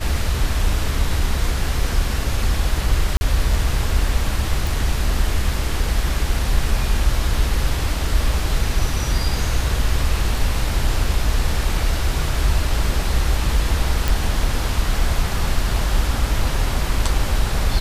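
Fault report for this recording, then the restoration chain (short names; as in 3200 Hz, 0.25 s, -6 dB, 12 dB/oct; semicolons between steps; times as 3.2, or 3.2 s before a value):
3.17–3.21 gap 40 ms
4.67 pop
14.08 pop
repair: de-click; interpolate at 3.17, 40 ms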